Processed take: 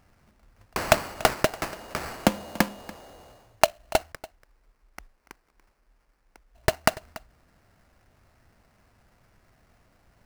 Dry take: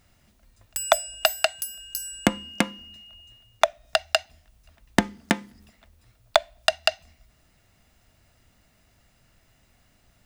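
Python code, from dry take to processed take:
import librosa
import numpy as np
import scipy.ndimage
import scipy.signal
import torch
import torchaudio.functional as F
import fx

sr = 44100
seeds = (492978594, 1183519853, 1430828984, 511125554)

y = fx.cheby2_bandstop(x, sr, low_hz=210.0, high_hz=2200.0, order=4, stop_db=80, at=(4.12, 6.55))
y = fx.sample_hold(y, sr, seeds[0], rate_hz=3500.0, jitter_pct=20)
y = y + 10.0 ** (-19.5 / 20.0) * np.pad(y, (int(287 * sr / 1000.0), 0))[:len(y)]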